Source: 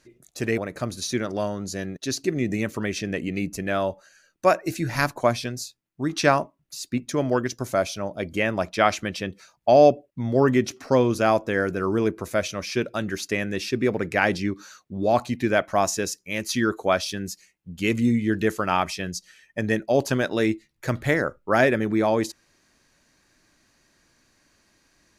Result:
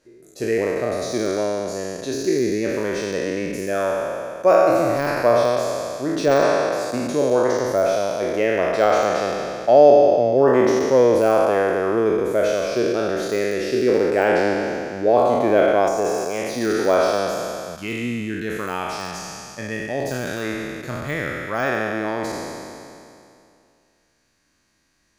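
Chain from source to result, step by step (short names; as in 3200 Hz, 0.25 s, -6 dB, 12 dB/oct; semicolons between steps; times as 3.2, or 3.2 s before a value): spectral trails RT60 2.53 s; de-esser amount 50%; bell 480 Hz +11 dB 1.3 oct, from 17.75 s -2 dB; gain -6.5 dB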